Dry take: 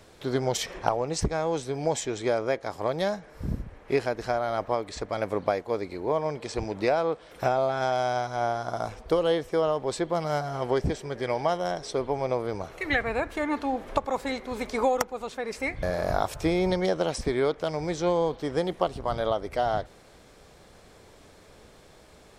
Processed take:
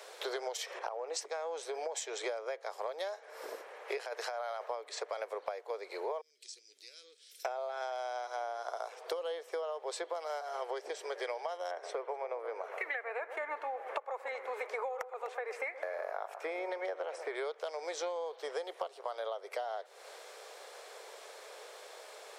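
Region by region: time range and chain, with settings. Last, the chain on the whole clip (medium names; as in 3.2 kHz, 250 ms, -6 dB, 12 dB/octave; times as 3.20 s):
0.79–2.23 s: compression, threshold -26 dBFS + three bands expanded up and down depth 40%
3.97–4.66 s: high-pass 510 Hz + compressor with a negative ratio -33 dBFS
6.21–7.45 s: Chebyshev band-stop 120–5300 Hz + compression 3:1, threshold -51 dBFS + de-hum 205.3 Hz, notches 33
11.71–17.35 s: resonant high shelf 2.9 kHz -9.5 dB, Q 1.5 + echo whose repeats swap between lows and highs 125 ms, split 1.4 kHz, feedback 55%, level -12.5 dB
whole clip: steep high-pass 430 Hz 48 dB/octave; compression 12:1, threshold -40 dBFS; trim +5 dB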